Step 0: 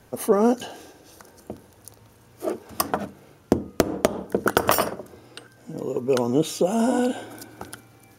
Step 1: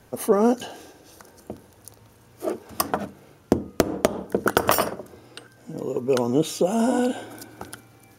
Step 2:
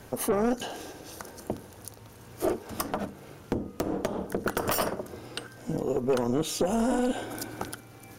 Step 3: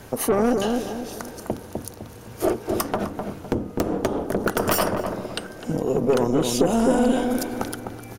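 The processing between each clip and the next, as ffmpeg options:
ffmpeg -i in.wav -af anull out.wav
ffmpeg -i in.wav -af "aeval=exprs='(tanh(6.31*val(0)+0.25)-tanh(0.25))/6.31':channel_layout=same,tremolo=f=270:d=0.462,alimiter=level_in=0.5dB:limit=-24dB:level=0:latency=1:release=445,volume=-0.5dB,volume=8dB" out.wav
ffmpeg -i in.wav -filter_complex "[0:a]asplit=2[link_01][link_02];[link_02]adelay=254,lowpass=frequency=840:poles=1,volume=-3dB,asplit=2[link_03][link_04];[link_04]adelay=254,lowpass=frequency=840:poles=1,volume=0.42,asplit=2[link_05][link_06];[link_06]adelay=254,lowpass=frequency=840:poles=1,volume=0.42,asplit=2[link_07][link_08];[link_08]adelay=254,lowpass=frequency=840:poles=1,volume=0.42,asplit=2[link_09][link_10];[link_10]adelay=254,lowpass=frequency=840:poles=1,volume=0.42[link_11];[link_01][link_03][link_05][link_07][link_09][link_11]amix=inputs=6:normalize=0,volume=5.5dB" out.wav

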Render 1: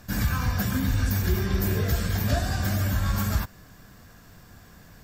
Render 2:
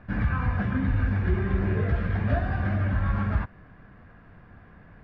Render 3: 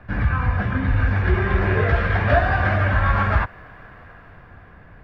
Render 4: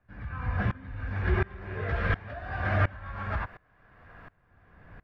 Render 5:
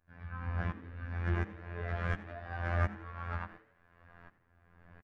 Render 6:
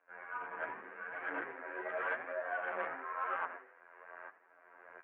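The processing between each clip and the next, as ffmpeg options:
ffmpeg -i in.wav -af "lowpass=frequency=2300:width=0.5412,lowpass=frequency=2300:width=1.3066" out.wav
ffmpeg -i in.wav -filter_complex "[0:a]equalizer=frequency=210:width_type=o:width=0.97:gain=-6,acrossover=split=260|440[link_01][link_02][link_03];[link_03]dynaudnorm=framelen=270:gausssize=9:maxgain=8dB[link_04];[link_01][link_02][link_04]amix=inputs=3:normalize=0,volume=6dB" out.wav
ffmpeg -i in.wav -af "alimiter=limit=-10.5dB:level=0:latency=1:release=338,aeval=exprs='val(0)*pow(10,-25*if(lt(mod(-1.4*n/s,1),2*abs(-1.4)/1000),1-mod(-1.4*n/s,1)/(2*abs(-1.4)/1000),(mod(-1.4*n/s,1)-2*abs(-1.4)/1000)/(1-2*abs(-1.4)/1000))/20)':channel_layout=same,volume=-1.5dB" out.wav
ffmpeg -i in.wav -filter_complex "[0:a]acrossover=split=1900[link_01][link_02];[link_02]asoftclip=type=tanh:threshold=-36dB[link_03];[link_01][link_03]amix=inputs=2:normalize=0,afftfilt=real='hypot(re,im)*cos(PI*b)':imag='0':win_size=2048:overlap=0.75,asplit=5[link_04][link_05][link_06][link_07][link_08];[link_05]adelay=86,afreqshift=120,volume=-18dB[link_09];[link_06]adelay=172,afreqshift=240,volume=-25.1dB[link_10];[link_07]adelay=258,afreqshift=360,volume=-32.3dB[link_11];[link_08]adelay=344,afreqshift=480,volume=-39.4dB[link_12];[link_04][link_09][link_10][link_11][link_12]amix=inputs=5:normalize=0,volume=-3.5dB" out.wav
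ffmpeg -i in.wav -af "flanger=delay=5.3:depth=8.7:regen=43:speed=0.88:shape=triangular,asoftclip=type=tanh:threshold=-36.5dB,highpass=frequency=490:width_type=q:width=0.5412,highpass=frequency=490:width_type=q:width=1.307,lowpass=frequency=2500:width_type=q:width=0.5176,lowpass=frequency=2500:width_type=q:width=0.7071,lowpass=frequency=2500:width_type=q:width=1.932,afreqshift=-60,volume=13dB" out.wav

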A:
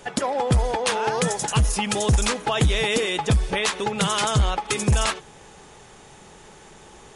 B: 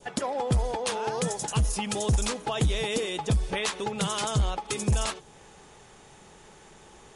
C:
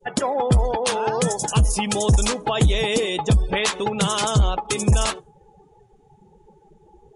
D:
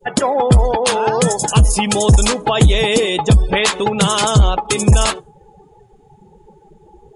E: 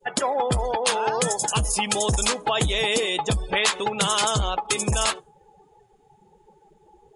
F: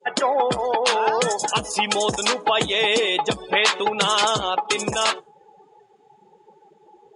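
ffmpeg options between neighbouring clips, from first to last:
ffmpeg -i in.wav -af "adynamicequalizer=threshold=0.0126:dfrequency=1800:dqfactor=0.87:tfrequency=1800:tqfactor=0.87:attack=5:release=100:ratio=0.375:range=3:mode=cutabove:tftype=bell,volume=-5dB" out.wav
ffmpeg -i in.wav -af "afftdn=noise_reduction=29:noise_floor=-43,volume=7.5dB" out.wav
ffmpeg -i in.wav -af "bandreject=frequency=5800:width=13,volume=6.5dB" out.wav
ffmpeg -i in.wav -af "lowshelf=frequency=390:gain=-11,volume=-4.5dB" out.wav
ffmpeg -i in.wav -af "highpass=240,lowpass=5500,volume=4dB" out.wav

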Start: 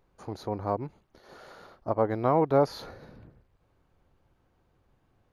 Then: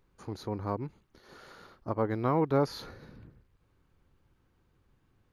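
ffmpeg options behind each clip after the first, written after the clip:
ffmpeg -i in.wav -af "equalizer=frequency=670:width_type=o:width=0.86:gain=-9" out.wav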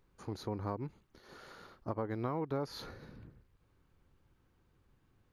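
ffmpeg -i in.wav -af "acompressor=threshold=-31dB:ratio=6,volume=-1.5dB" out.wav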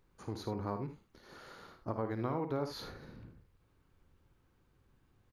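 ffmpeg -i in.wav -af "aecho=1:1:54|78:0.316|0.282" out.wav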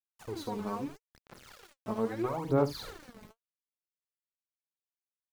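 ffmpeg -i in.wav -af "bandreject=frequency=50:width_type=h:width=6,bandreject=frequency=100:width_type=h:width=6,bandreject=frequency=150:width_type=h:width=6,bandreject=frequency=200:width_type=h:width=6,bandreject=frequency=250:width_type=h:width=6,bandreject=frequency=300:width_type=h:width=6,aeval=exprs='val(0)*gte(abs(val(0)),0.00376)':channel_layout=same,aphaser=in_gain=1:out_gain=1:delay=4.7:decay=0.71:speed=0.77:type=sinusoidal" out.wav

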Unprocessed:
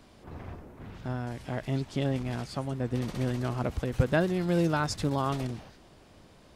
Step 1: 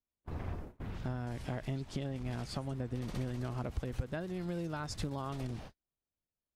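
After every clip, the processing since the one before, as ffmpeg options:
ffmpeg -i in.wav -af "agate=range=-45dB:threshold=-46dB:ratio=16:detection=peak,acompressor=threshold=-35dB:ratio=12,lowshelf=frequency=64:gain=9.5" out.wav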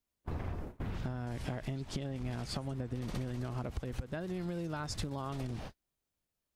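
ffmpeg -i in.wav -af "acompressor=threshold=-40dB:ratio=6,volume=6dB" out.wav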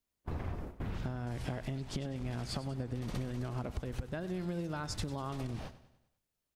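ffmpeg -i in.wav -af "aecho=1:1:98|196|294|392|490:0.178|0.0871|0.0427|0.0209|0.0103" out.wav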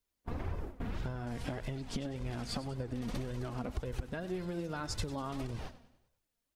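ffmpeg -i in.wav -af "flanger=delay=1.9:depth=2.4:regen=35:speed=1.8:shape=sinusoidal,volume=4.5dB" out.wav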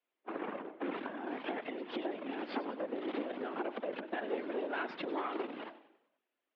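ffmpeg -i in.wav -af "aeval=exprs='0.0631*(cos(1*acos(clip(val(0)/0.0631,-1,1)))-cos(1*PI/2))+0.0126*(cos(4*acos(clip(val(0)/0.0631,-1,1)))-cos(4*PI/2))':channel_layout=same,afftfilt=real='hypot(re,im)*cos(2*PI*random(0))':imag='hypot(re,im)*sin(2*PI*random(1))':win_size=512:overlap=0.75,highpass=frequency=210:width_type=q:width=0.5412,highpass=frequency=210:width_type=q:width=1.307,lowpass=frequency=3200:width_type=q:width=0.5176,lowpass=frequency=3200:width_type=q:width=0.7071,lowpass=frequency=3200:width_type=q:width=1.932,afreqshift=64,volume=9.5dB" out.wav

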